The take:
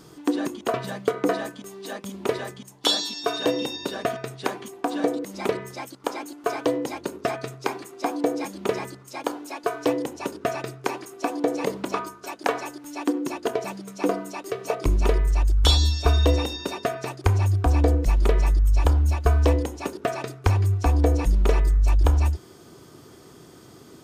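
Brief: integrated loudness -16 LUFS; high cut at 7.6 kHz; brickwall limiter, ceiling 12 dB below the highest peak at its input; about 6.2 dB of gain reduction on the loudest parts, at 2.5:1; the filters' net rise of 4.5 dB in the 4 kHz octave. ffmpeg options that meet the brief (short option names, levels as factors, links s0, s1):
-af "lowpass=7600,equalizer=f=4000:t=o:g=5.5,acompressor=threshold=0.0708:ratio=2.5,volume=5.62,alimiter=limit=0.562:level=0:latency=1"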